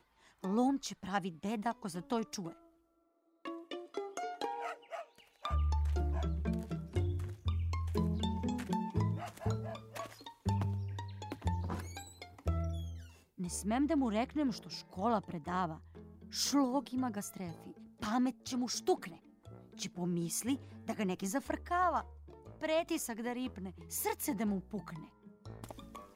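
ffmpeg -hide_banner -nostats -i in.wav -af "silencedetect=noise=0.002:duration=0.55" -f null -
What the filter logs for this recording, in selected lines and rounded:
silence_start: 2.63
silence_end: 3.45 | silence_duration: 0.82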